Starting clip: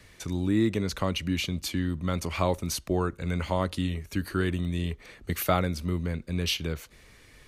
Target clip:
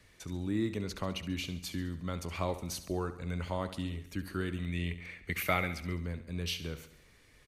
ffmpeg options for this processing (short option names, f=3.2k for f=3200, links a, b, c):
-filter_complex "[0:a]asettb=1/sr,asplit=3[a][b][c];[a]atrim=end=4.574[d];[b]atrim=start=4.57:end=5.95,asetpts=PTS-STARTPTS,afade=t=in:d=0.004:c=qsin,afade=t=out:st=1.376:d=0.004:c=qsin,equalizer=f=2.2k:t=o:w=0.68:g=14[e];[c]atrim=start=5.946[f];[d][e]acrossfade=d=0.004:c1=hsin:c2=qsin[g];[g][f]acrossfade=d=0.004:c1=qsin:c2=hsin,aecho=1:1:69|138|207|276|345|414:0.224|0.121|0.0653|0.0353|0.019|0.0103,volume=-8dB"